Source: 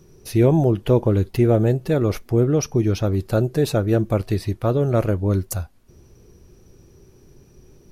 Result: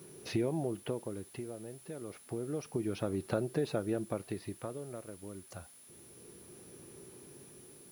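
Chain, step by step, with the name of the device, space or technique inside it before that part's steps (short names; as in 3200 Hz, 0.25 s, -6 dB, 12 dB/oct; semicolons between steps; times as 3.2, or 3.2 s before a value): medium wave at night (BPF 180–3700 Hz; compressor 4:1, threshold -31 dBFS, peak gain reduction 16 dB; tremolo 0.29 Hz, depth 77%; whine 10000 Hz -56 dBFS; white noise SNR 24 dB)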